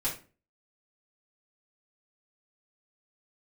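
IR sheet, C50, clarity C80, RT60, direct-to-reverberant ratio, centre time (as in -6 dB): 8.0 dB, 14.0 dB, 0.35 s, -8.5 dB, 24 ms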